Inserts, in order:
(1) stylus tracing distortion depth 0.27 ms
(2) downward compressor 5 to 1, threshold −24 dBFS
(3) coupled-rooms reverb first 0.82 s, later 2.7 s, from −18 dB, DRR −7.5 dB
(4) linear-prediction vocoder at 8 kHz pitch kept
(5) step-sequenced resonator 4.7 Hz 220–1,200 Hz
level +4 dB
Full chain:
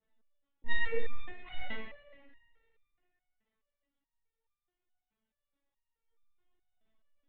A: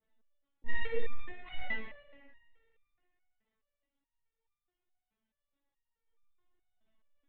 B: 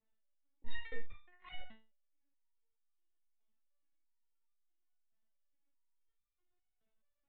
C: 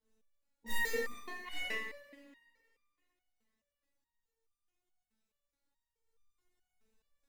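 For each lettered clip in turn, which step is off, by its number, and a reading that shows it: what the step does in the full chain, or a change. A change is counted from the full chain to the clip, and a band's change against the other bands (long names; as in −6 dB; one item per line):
1, change in momentary loudness spread −2 LU
3, 500 Hz band −4.5 dB
4, 1 kHz band +2.0 dB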